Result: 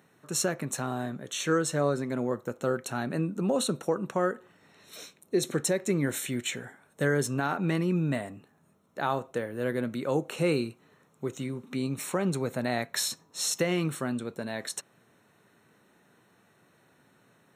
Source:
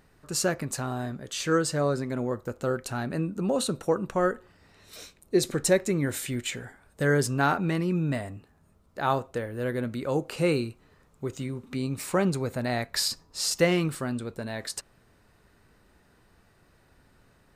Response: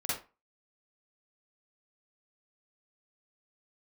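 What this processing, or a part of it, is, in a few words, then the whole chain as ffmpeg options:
PA system with an anti-feedback notch: -af "highpass=f=130:w=0.5412,highpass=f=130:w=1.3066,asuperstop=centerf=4800:order=20:qfactor=6.2,alimiter=limit=-16dB:level=0:latency=1:release=170"

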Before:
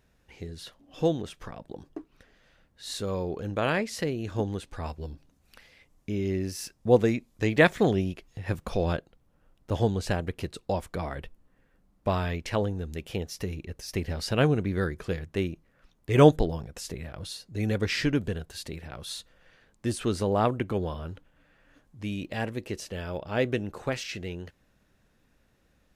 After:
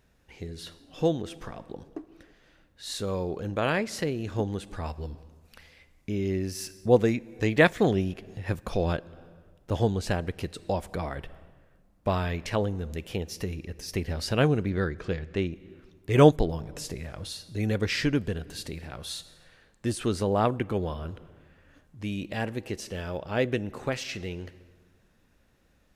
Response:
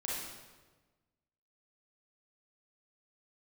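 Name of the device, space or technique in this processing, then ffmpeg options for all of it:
ducked reverb: -filter_complex "[0:a]asettb=1/sr,asplit=3[a][b][c];[a]atrim=end=14.704[d];[b]atrim=start=14.7:end=15.53,asetpts=PTS-STARTPTS,afade=t=in:d=0.004:c=qsin,afade=t=out:st=0.826:d=0.004:c=qsin,lowpass=6k[e];[c]atrim=start=15.526[f];[d][e]acrossfade=d=0.004:c1=hsin:c2=qsin[g];[g][f]acrossfade=d=0.004:c1=qsin:c2=hsin,asplit=3[h][i][j];[1:a]atrim=start_sample=2205[k];[i][k]afir=irnorm=-1:irlink=0[l];[j]apad=whole_len=1144403[m];[l][m]sidechaincompress=threshold=-35dB:ratio=10:attack=8.2:release=313,volume=-13.5dB[n];[h][n]amix=inputs=2:normalize=0"

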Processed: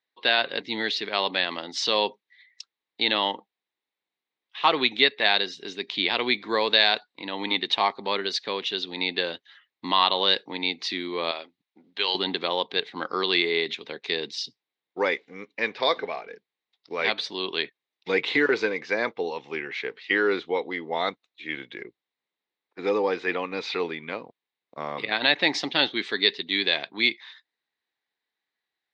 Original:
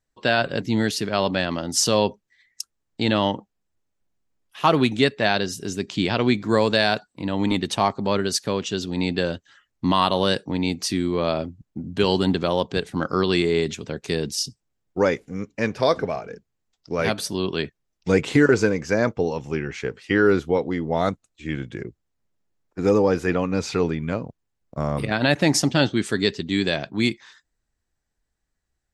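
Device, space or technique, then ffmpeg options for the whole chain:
phone earpiece: -filter_complex "[0:a]highpass=500,equalizer=f=610:t=q:w=4:g=-7,equalizer=f=1.4k:t=q:w=4:g=-5,equalizer=f=2.1k:t=q:w=4:g=6,equalizer=f=3.8k:t=q:w=4:g=9,lowpass=f=4.2k:w=0.5412,lowpass=f=4.2k:w=1.3066,asettb=1/sr,asplit=3[a][b][c];[a]atrim=end=11.314[d];[b]atrim=start=11.31:end=12.15,asetpts=PTS-STARTPTS,afade=t=in:d=0.004:c=qsin,afade=t=out:st=0.836:d=0.004:c=qsin,highpass=f=1k:p=1[e];[c]atrim=start=12.146[f];[d][e]acrossfade=d=0.004:c1=hsin:c2=qsin[g];[g][f]acrossfade=d=0.004:c1=qsin:c2=hsin"

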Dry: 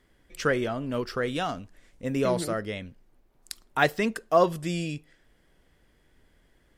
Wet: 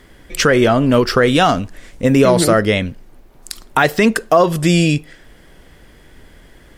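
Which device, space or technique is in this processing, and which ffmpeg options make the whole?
loud club master: -af "acompressor=threshold=-27dB:ratio=2.5,asoftclip=type=hard:threshold=-11.5dB,alimiter=level_in=20dB:limit=-1dB:release=50:level=0:latency=1,volume=-1dB"

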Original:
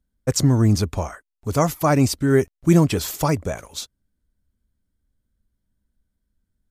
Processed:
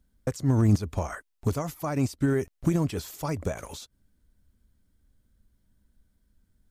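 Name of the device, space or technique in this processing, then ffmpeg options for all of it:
de-esser from a sidechain: -filter_complex "[0:a]asplit=2[a][b];[b]highpass=f=5.4k:p=1,apad=whole_len=295650[c];[a][c]sidechaincompress=threshold=-47dB:ratio=6:attack=0.59:release=91,volume=6.5dB"

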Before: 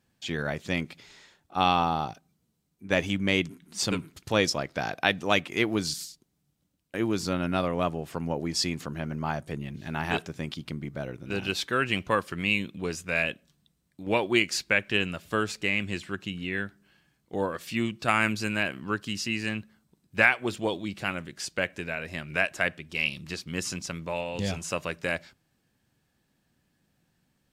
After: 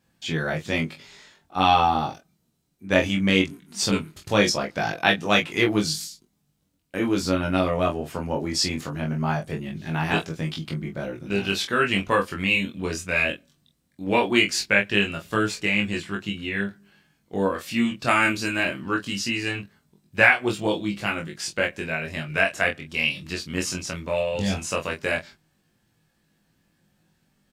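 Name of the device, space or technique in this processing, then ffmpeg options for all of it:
double-tracked vocal: -filter_complex "[0:a]asplit=2[a][b];[b]adelay=25,volume=-6dB[c];[a][c]amix=inputs=2:normalize=0,flanger=delay=19:depth=2.8:speed=0.19,volume=6.5dB"

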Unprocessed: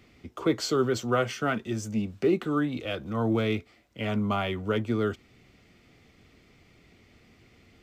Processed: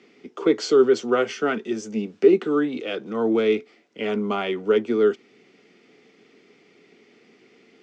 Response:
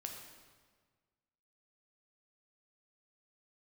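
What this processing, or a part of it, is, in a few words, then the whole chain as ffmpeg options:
television speaker: -af "highpass=f=200:w=0.5412,highpass=f=200:w=1.3066,equalizer=f=420:t=q:w=4:g=9,equalizer=f=620:t=q:w=4:g=-4,equalizer=f=1.1k:t=q:w=4:g=-3,equalizer=f=4k:t=q:w=4:g=-3,lowpass=f=6.7k:w=0.5412,lowpass=f=6.7k:w=1.3066,volume=3.5dB"

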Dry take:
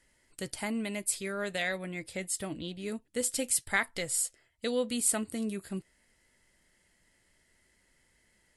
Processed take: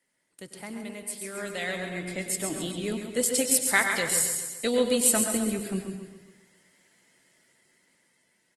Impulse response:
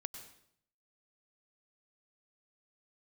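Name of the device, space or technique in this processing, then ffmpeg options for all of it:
far-field microphone of a smart speaker: -filter_complex "[0:a]asettb=1/sr,asplit=3[a][b][c];[a]atrim=end=3.484[d];[b]atrim=start=3.48:end=4.04,asetpts=PTS-STARTPTS,afade=t=in:d=0.004:c=qsin,afade=t=out:st=0.556:d=0.004:c=qsin,bandreject=f=50:t=h:w=6,bandreject=f=100:t=h:w=6,bandreject=f=150:t=h:w=6,bandreject=f=200:t=h:w=6,bandreject=f=250:t=h:w=6,bandreject=f=300:t=h:w=6,bandreject=f=350:t=h:w=6[e];[c]atrim=start=4.036[f];[d][e]acrossfade=d=0.004:c1=hsin:c2=qsin[g];[g][f]acrossfade=d=0.004:c1=qsin:c2=hsin,aecho=1:1:134|268|402|536|670|804:0.398|0.195|0.0956|0.0468|0.023|0.0112[h];[1:a]atrim=start_sample=2205[i];[h][i]afir=irnorm=-1:irlink=0,highpass=f=150:w=0.5412,highpass=f=150:w=1.3066,dynaudnorm=f=310:g=13:m=11dB,volume=-2dB" -ar 48000 -c:a libopus -b:a 24k

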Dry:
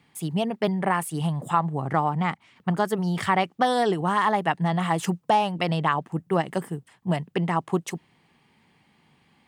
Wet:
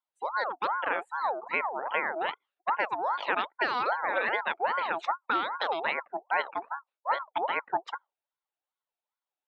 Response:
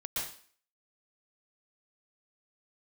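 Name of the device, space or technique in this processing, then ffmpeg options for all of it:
voice changer toy: -af "afftdn=nr=30:nf=-37,aeval=exprs='val(0)*sin(2*PI*880*n/s+880*0.45/2.5*sin(2*PI*2.5*n/s))':c=same,highpass=520,equalizer=f=550:t=q:w=4:g=5,equalizer=f=880:t=q:w=4:g=6,equalizer=f=3.7k:t=q:w=4:g=4,lowpass=f=4.7k:w=0.5412,lowpass=f=4.7k:w=1.3066,volume=-3.5dB"

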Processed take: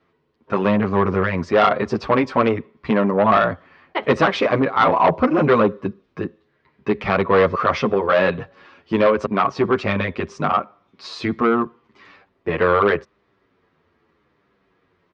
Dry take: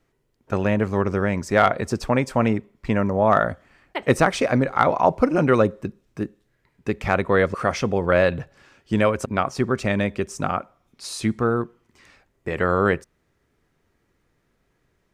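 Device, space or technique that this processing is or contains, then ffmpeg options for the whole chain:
barber-pole flanger into a guitar amplifier: -filter_complex "[0:a]asplit=2[a][b];[b]adelay=8.7,afreqshift=-0.8[c];[a][c]amix=inputs=2:normalize=1,asoftclip=type=tanh:threshold=-18.5dB,highpass=95,equalizer=f=120:t=q:w=4:g=-7,equalizer=f=430:t=q:w=4:g=3,equalizer=f=1.1k:t=q:w=4:g=7,lowpass=f=4.3k:w=0.5412,lowpass=f=4.3k:w=1.3066,volume=8dB"

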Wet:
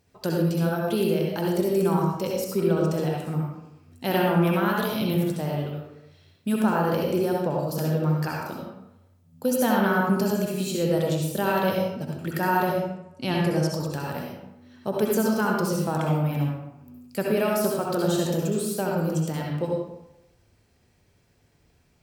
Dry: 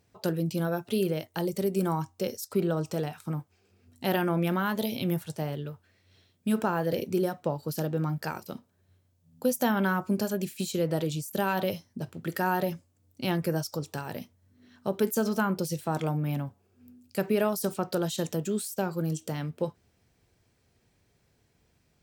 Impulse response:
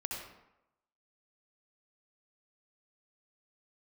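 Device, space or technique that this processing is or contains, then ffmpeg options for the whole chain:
bathroom: -filter_complex "[0:a]asettb=1/sr,asplit=3[a][b][c];[a]atrim=end=12.674[d];[b]atrim=start=12.67:end=13.74,asetpts=PTS-STARTPTS,afade=t=in:d=0.004:c=qsin,afade=t=out:st=1.066:d=0.004:c=qsin,lowpass=f=11k:w=0.5412,lowpass=f=11k:w=1.3066[e];[c]atrim=start=13.736[f];[d][e]acrossfade=d=0.004:c1=hsin:c2=qsin[g];[g][f]acrossfade=d=0.004:c1=qsin:c2=hsin[h];[1:a]atrim=start_sample=2205[i];[h][i]afir=irnorm=-1:irlink=0,volume=3.5dB"

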